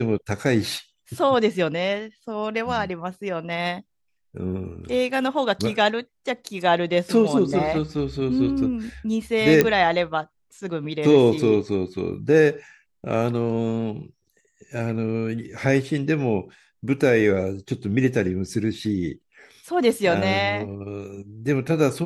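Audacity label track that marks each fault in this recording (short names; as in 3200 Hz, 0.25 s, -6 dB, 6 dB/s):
9.610000	9.610000	pop -3 dBFS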